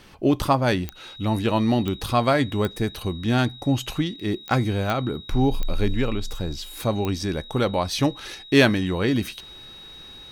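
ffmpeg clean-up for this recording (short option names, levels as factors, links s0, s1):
-af "adeclick=t=4,bandreject=f=3800:w=30"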